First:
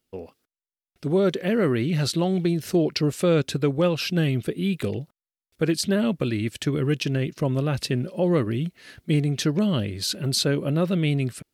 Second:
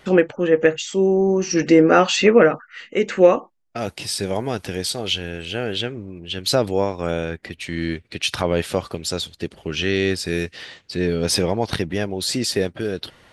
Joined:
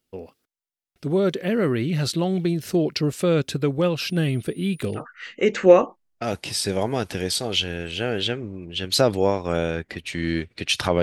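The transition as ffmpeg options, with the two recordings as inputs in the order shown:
-filter_complex "[0:a]asettb=1/sr,asplit=3[s0][s1][s2];[s0]atrim=end=4.064[s3];[s1]atrim=start=4.06:end=5.03,asetpts=PTS-STARTPTS,afade=t=in:d=0.004:c=qsin,afade=t=out:st=0.966:d=0.004:c=qsin,aeval=exprs='val(0)+0.00282*sin(2*PI*9600*n/s)':c=same[s4];[s2]atrim=start=5.026[s5];[s3][s4]acrossfade=d=0.004:c1=hsin:c2=qsin[s6];[s6][s5]acrossfade=d=0.004:c1=qsin:c2=hsin,apad=whole_dur=11.02,atrim=end=11.02,atrim=end=5.03,asetpts=PTS-STARTPTS[s7];[1:a]atrim=start=2.49:end=8.56,asetpts=PTS-STARTPTS[s8];[s7][s8]acrossfade=d=0.08:c1=tri:c2=tri"

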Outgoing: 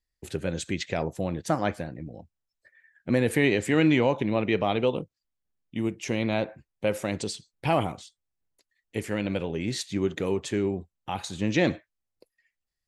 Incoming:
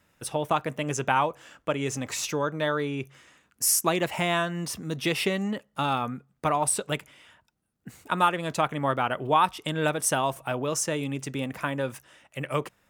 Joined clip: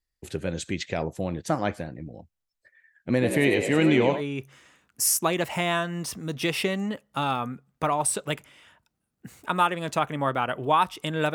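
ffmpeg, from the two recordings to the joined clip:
-filter_complex "[0:a]asplit=3[s0][s1][s2];[s0]afade=t=out:st=3.21:d=0.02[s3];[s1]asplit=6[s4][s5][s6][s7][s8][s9];[s5]adelay=97,afreqshift=64,volume=0.447[s10];[s6]adelay=194,afreqshift=128,volume=0.197[s11];[s7]adelay=291,afreqshift=192,volume=0.0861[s12];[s8]adelay=388,afreqshift=256,volume=0.038[s13];[s9]adelay=485,afreqshift=320,volume=0.0168[s14];[s4][s10][s11][s12][s13][s14]amix=inputs=6:normalize=0,afade=t=in:st=3.21:d=0.02,afade=t=out:st=4.22:d=0.02[s15];[s2]afade=t=in:st=4.22:d=0.02[s16];[s3][s15][s16]amix=inputs=3:normalize=0,apad=whole_dur=11.34,atrim=end=11.34,atrim=end=4.22,asetpts=PTS-STARTPTS[s17];[1:a]atrim=start=2.76:end=9.96,asetpts=PTS-STARTPTS[s18];[s17][s18]acrossfade=d=0.08:c1=tri:c2=tri"

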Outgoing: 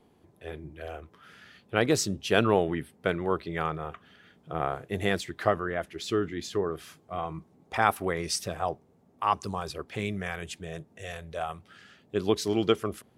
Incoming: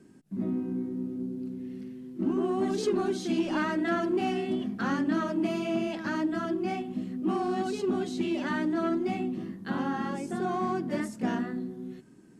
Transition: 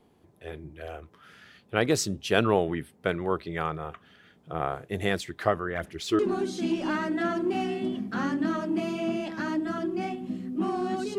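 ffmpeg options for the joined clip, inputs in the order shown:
-filter_complex "[0:a]asplit=3[s0][s1][s2];[s0]afade=t=out:st=5.74:d=0.02[s3];[s1]aphaser=in_gain=1:out_gain=1:delay=3.1:decay=0.58:speed=1.7:type=sinusoidal,afade=t=in:st=5.74:d=0.02,afade=t=out:st=6.19:d=0.02[s4];[s2]afade=t=in:st=6.19:d=0.02[s5];[s3][s4][s5]amix=inputs=3:normalize=0,apad=whole_dur=11.18,atrim=end=11.18,atrim=end=6.192[s6];[1:a]atrim=start=2.858:end=7.85[s7];[s6][s7]acrossfade=d=0.004:c1=hsin:c2=hsin"

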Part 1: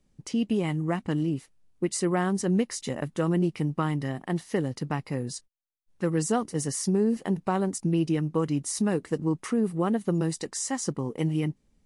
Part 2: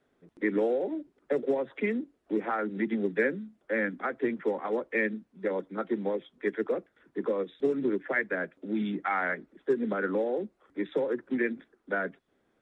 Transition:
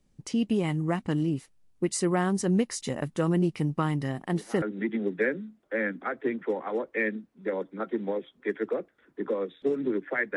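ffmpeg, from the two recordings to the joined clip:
-filter_complex "[1:a]asplit=2[s0][s1];[0:a]apad=whole_dur=10.36,atrim=end=10.36,atrim=end=4.622[s2];[s1]atrim=start=2.598:end=8.34[s3];[s0]atrim=start=2.16:end=2.6,asetpts=PTS-STARTPTS,volume=0.188,afade=t=in:d=0.004:c=hsin,afade=t=out:st=0.436:d=0.004:c=hsin,adelay=4180[s4];[s2][s3]acrossfade=d=0.004:c1=hsin:c2=hsin[s5];[s5][s4]amix=inputs=2:normalize=0"

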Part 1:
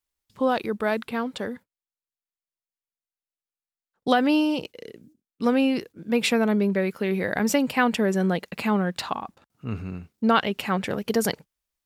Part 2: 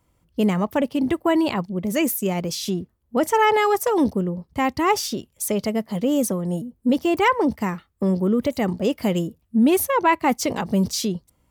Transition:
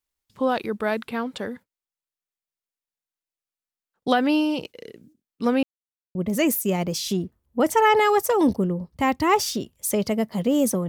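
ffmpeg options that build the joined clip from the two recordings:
-filter_complex "[0:a]apad=whole_dur=10.88,atrim=end=10.88,asplit=2[s0][s1];[s0]atrim=end=5.63,asetpts=PTS-STARTPTS,afade=t=out:st=5.626:d=0.004:c=hsin[s2];[s1]atrim=start=5.63:end=6.15,asetpts=PTS-STARTPTS,volume=0[s3];[1:a]atrim=start=1.72:end=6.45,asetpts=PTS-STARTPTS,afade=t=in:d=0.004:c=hsin[s4];[s2][s3][s4]concat=n=3:v=0:a=1"

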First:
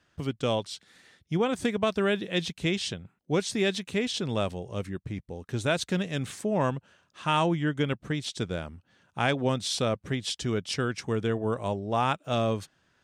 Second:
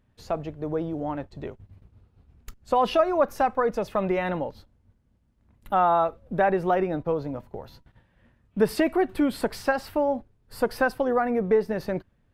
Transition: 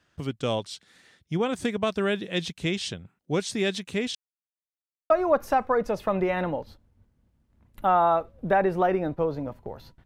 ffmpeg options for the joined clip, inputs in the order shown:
-filter_complex "[0:a]apad=whole_dur=10.05,atrim=end=10.05,asplit=2[s0][s1];[s0]atrim=end=4.15,asetpts=PTS-STARTPTS,afade=t=out:st=4.146:d=0.004:c=hsin[s2];[s1]atrim=start=4.15:end=5.1,asetpts=PTS-STARTPTS,volume=0[s3];[1:a]atrim=start=2.98:end=7.93,asetpts=PTS-STARTPTS,afade=t=in:d=0.004:c=hsin[s4];[s2][s3][s4]concat=n=3:v=0:a=1"

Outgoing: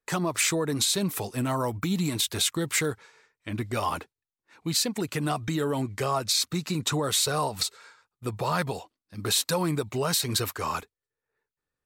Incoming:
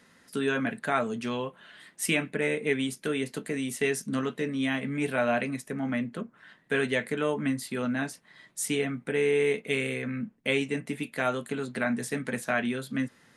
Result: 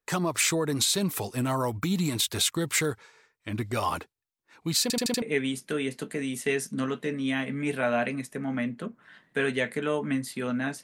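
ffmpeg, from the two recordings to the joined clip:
-filter_complex "[0:a]apad=whole_dur=10.83,atrim=end=10.83,asplit=5[s0][s1][s2][s3][s4];[s0]atrim=end=4.902[s5];[s1]atrim=start=4.818:end=4.902[s6];[s2]atrim=start=4.818:end=4.902[s7];[s3]atrim=start=4.818:end=4.902[s8];[s4]atrim=start=4.818:end=4.902[s9];[1:a]atrim=start=2.568:end=8.18[s10];[s5][s6]acrossfade=d=0.004:c1=hsin:c2=hsin[s11];[s11][s7]acrossfade=d=0.004:c1=hsin:c2=hsin[s12];[s12][s8]acrossfade=d=0.004:c1=hsin:c2=hsin[s13];[s13][s9]acrossfade=d=0.004:c1=hsin:c2=hsin[s14];[s14][s10]acrossfade=d=0.004:c1=hsin:c2=hsin"

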